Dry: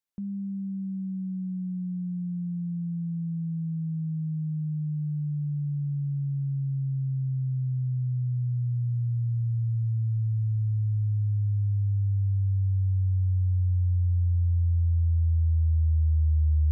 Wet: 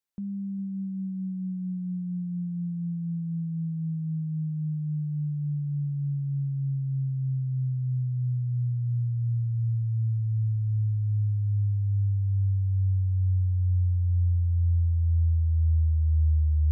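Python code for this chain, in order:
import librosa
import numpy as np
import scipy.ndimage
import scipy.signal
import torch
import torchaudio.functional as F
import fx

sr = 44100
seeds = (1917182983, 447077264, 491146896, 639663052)

y = x + 10.0 ** (-18.5 / 20.0) * np.pad(x, (int(405 * sr / 1000.0), 0))[:len(x)]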